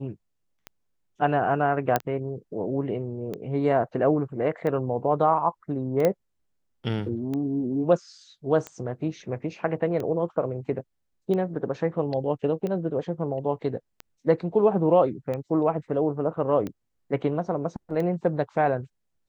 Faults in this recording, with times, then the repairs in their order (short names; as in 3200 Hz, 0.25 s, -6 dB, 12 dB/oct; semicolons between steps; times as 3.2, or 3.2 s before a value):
tick 45 rpm -20 dBFS
1.96 pop -8 dBFS
6.05 pop -10 dBFS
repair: de-click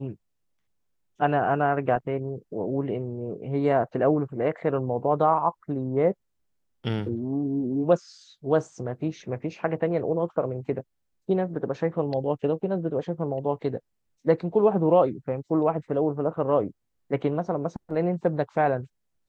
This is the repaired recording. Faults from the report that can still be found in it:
none